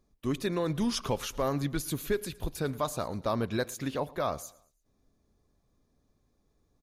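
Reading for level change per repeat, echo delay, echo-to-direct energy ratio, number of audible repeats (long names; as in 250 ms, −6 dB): −7.5 dB, 113 ms, −21.0 dB, 2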